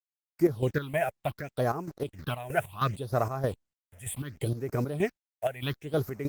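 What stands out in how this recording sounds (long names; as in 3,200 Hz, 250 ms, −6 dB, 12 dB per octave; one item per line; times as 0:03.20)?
a quantiser's noise floor 8 bits, dither none
chopped level 3.2 Hz, depth 65%, duty 50%
phaser sweep stages 6, 0.69 Hz, lowest notch 290–3,400 Hz
Opus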